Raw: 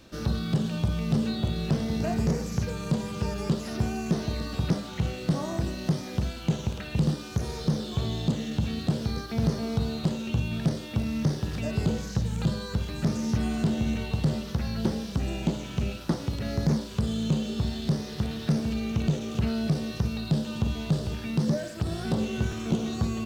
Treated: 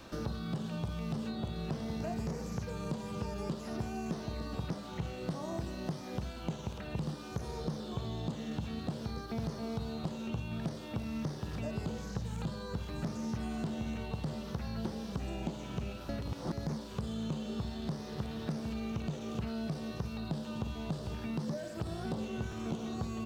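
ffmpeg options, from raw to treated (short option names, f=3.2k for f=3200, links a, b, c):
-filter_complex "[0:a]asplit=3[a][b][c];[a]atrim=end=16.092[d];[b]atrim=start=16.088:end=16.522,asetpts=PTS-STARTPTS,areverse[e];[c]atrim=start=16.518[f];[d][e]acrossfade=d=0.004:c1=hsin:c2=hsin[g];[g][f]acrossfade=d=0.004:c1=hsin:c2=hsin,equalizer=f=1k:w=0.98:g=8,acrossover=split=730|1900[h][i][j];[h]acompressor=threshold=-36dB:ratio=4[k];[i]acompressor=threshold=-56dB:ratio=4[l];[j]acompressor=threshold=-54dB:ratio=4[m];[k][l][m]amix=inputs=3:normalize=0"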